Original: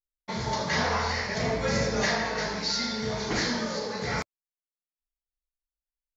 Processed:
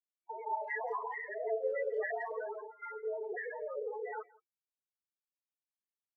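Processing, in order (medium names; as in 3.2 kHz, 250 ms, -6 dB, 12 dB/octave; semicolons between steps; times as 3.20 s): rattle on loud lows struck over -36 dBFS, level -24 dBFS; FFT band-pass 350–2300 Hz; gate with hold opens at -26 dBFS; loudest bins only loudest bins 4; speakerphone echo 170 ms, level -23 dB; trim -2 dB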